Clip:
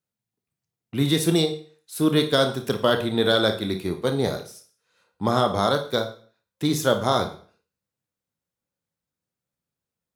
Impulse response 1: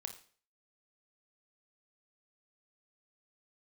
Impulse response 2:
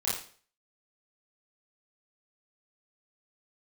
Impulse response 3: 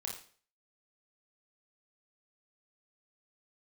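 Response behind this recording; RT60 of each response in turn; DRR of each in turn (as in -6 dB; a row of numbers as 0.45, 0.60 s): 1; 0.45, 0.45, 0.45 s; 5.5, -8.5, -1.0 dB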